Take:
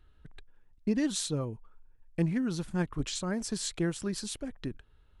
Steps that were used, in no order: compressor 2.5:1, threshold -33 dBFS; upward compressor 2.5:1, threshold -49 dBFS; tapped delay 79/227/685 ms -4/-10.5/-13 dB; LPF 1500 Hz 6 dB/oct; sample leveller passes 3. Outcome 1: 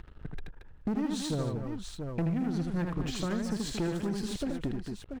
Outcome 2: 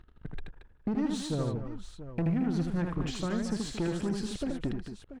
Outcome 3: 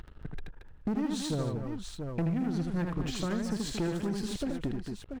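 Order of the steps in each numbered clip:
upward compressor > LPF > sample leveller > tapped delay > compressor; sample leveller > compressor > tapped delay > upward compressor > LPF; LPF > upward compressor > sample leveller > tapped delay > compressor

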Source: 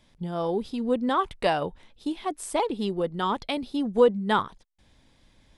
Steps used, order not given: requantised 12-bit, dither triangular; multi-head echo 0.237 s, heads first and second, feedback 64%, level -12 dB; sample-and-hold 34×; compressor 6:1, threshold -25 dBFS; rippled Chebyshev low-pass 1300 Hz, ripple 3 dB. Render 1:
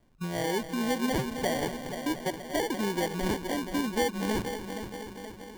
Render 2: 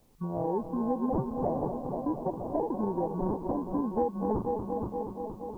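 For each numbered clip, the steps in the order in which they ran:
requantised > rippled Chebyshev low-pass > compressor > multi-head echo > sample-and-hold; multi-head echo > sample-and-hold > rippled Chebyshev low-pass > compressor > requantised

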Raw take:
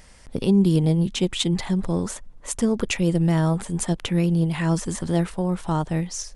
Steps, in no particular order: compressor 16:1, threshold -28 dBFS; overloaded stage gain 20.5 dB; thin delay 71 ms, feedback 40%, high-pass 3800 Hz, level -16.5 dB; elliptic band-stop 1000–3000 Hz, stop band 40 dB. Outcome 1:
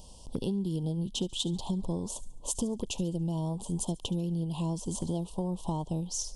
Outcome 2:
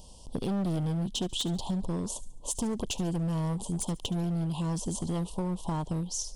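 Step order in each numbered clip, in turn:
elliptic band-stop > compressor > thin delay > overloaded stage; elliptic band-stop > overloaded stage > compressor > thin delay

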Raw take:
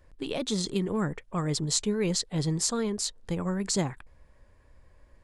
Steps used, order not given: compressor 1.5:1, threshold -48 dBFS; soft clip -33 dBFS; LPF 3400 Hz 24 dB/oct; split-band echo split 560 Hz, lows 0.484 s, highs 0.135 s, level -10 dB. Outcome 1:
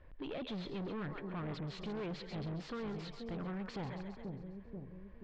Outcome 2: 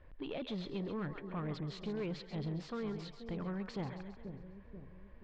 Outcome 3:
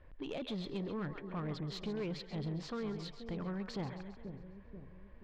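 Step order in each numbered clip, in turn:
split-band echo > soft clip > LPF > compressor; compressor > split-band echo > soft clip > LPF; LPF > compressor > split-band echo > soft clip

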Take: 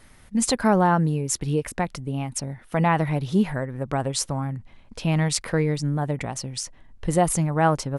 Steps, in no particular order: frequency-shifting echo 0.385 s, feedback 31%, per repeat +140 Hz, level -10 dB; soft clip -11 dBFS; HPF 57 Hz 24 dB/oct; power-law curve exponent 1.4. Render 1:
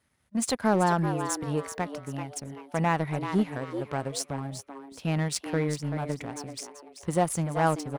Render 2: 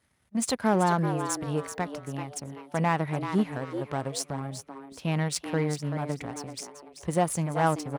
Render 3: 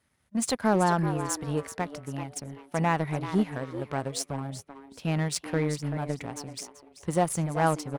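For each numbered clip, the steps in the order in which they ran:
HPF > power-law curve > frequency-shifting echo > soft clip; power-law curve > frequency-shifting echo > soft clip > HPF; frequency-shifting echo > HPF > power-law curve > soft clip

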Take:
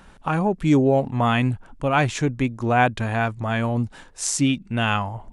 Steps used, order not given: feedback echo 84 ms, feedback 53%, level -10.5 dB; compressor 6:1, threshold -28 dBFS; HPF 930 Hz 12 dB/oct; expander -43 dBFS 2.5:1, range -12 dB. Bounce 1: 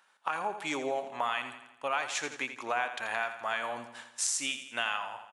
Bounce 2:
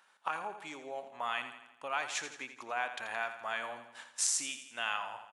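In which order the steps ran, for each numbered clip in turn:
HPF > compressor > expander > feedback echo; compressor > HPF > expander > feedback echo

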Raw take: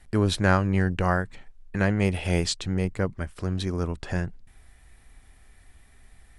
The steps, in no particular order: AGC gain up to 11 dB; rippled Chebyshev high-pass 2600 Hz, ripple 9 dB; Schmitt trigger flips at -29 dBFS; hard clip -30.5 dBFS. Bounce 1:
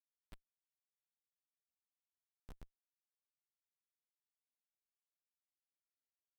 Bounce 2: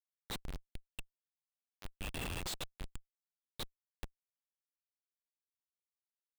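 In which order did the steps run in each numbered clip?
AGC > hard clip > rippled Chebyshev high-pass > Schmitt trigger; rippled Chebyshev high-pass > hard clip > AGC > Schmitt trigger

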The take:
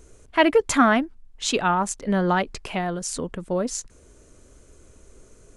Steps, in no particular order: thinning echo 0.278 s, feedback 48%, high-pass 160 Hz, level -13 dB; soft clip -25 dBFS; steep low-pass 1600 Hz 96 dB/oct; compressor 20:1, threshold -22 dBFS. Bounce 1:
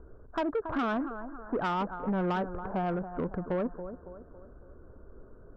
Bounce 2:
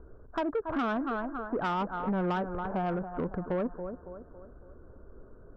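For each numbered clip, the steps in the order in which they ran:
steep low-pass > compressor > thinning echo > soft clip; thinning echo > compressor > steep low-pass > soft clip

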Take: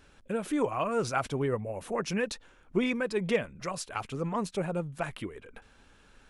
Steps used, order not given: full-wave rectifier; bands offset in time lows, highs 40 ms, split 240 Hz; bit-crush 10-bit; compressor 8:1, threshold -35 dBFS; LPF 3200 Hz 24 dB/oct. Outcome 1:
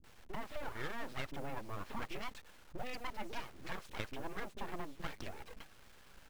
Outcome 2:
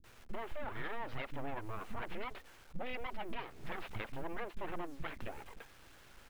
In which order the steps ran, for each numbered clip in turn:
LPF > compressor > bit-crush > bands offset in time > full-wave rectifier; full-wave rectifier > LPF > bit-crush > bands offset in time > compressor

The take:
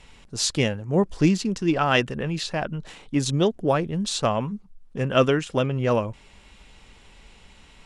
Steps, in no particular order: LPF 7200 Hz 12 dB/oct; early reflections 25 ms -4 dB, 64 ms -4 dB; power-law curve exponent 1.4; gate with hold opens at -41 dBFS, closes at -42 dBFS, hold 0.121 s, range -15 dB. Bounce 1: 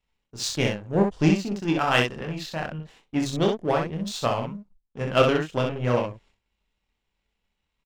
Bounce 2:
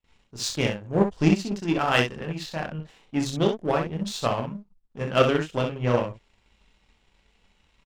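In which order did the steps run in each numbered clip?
LPF > power-law curve > early reflections > gate with hold; LPF > gate with hold > early reflections > power-law curve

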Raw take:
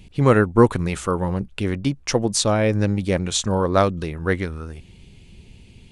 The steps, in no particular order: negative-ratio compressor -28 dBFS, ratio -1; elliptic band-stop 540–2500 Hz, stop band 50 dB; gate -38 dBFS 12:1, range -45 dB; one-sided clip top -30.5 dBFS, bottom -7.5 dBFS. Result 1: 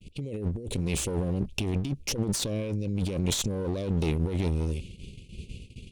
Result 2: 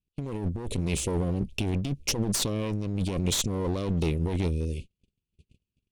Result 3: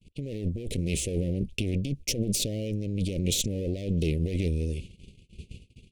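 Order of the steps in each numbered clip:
elliptic band-stop > negative-ratio compressor > gate > one-sided clip; elliptic band-stop > gate > one-sided clip > negative-ratio compressor; one-sided clip > negative-ratio compressor > elliptic band-stop > gate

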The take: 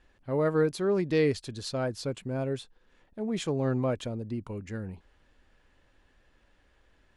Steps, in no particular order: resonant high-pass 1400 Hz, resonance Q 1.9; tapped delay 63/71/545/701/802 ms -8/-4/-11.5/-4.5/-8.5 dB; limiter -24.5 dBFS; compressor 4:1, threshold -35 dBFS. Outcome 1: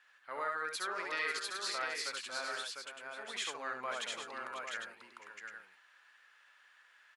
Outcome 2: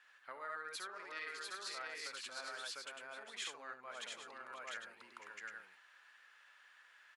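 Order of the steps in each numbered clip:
resonant high-pass > limiter > compressor > tapped delay; tapped delay > limiter > compressor > resonant high-pass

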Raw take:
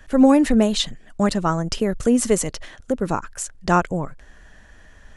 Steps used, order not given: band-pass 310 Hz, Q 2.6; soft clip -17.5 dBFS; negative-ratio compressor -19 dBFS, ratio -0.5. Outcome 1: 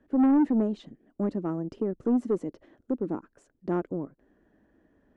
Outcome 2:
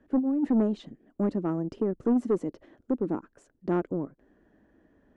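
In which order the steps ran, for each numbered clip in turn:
band-pass > soft clip > negative-ratio compressor; band-pass > negative-ratio compressor > soft clip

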